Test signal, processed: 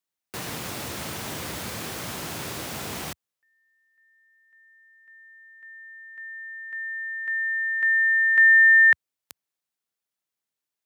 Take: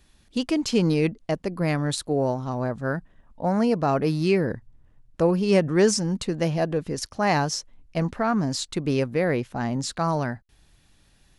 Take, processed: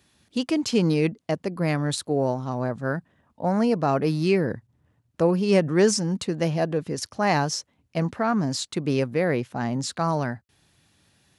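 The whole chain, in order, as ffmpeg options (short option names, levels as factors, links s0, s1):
-af "highpass=f=82:w=0.5412,highpass=f=82:w=1.3066"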